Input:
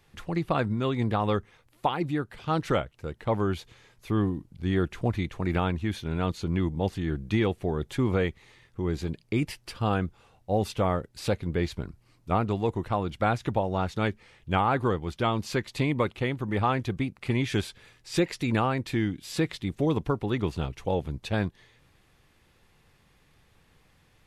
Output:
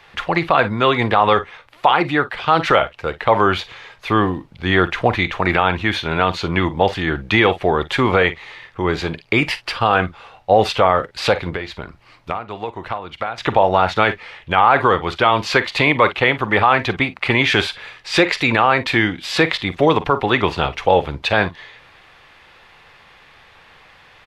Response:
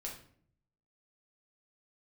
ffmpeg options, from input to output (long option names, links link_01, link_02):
-filter_complex "[0:a]acrossover=split=550 4300:gain=0.158 1 0.112[link_01][link_02][link_03];[link_01][link_02][link_03]amix=inputs=3:normalize=0,asettb=1/sr,asplit=3[link_04][link_05][link_06];[link_04]atrim=end=11.494[link_07];[link_05]atrim=start=11.49:end=13.38,asetpts=PTS-STARTPTS,afade=type=in:duration=0.004:curve=qsin,afade=type=out:start_time=1.886:duration=0.004:curve=qsin,acompressor=threshold=-44dB:ratio=6[link_08];[link_06]atrim=start=13.376[link_09];[link_07][link_08]acrossfade=duration=0.004:curve1=hsin:curve2=qsin[link_10];[link_10][link_09]acrossfade=duration=0.004:curve1=qsin:curve2=hsin,aecho=1:1:43|55:0.15|0.112,alimiter=level_in=21.5dB:limit=-1dB:release=50:level=0:latency=1,volume=-1dB"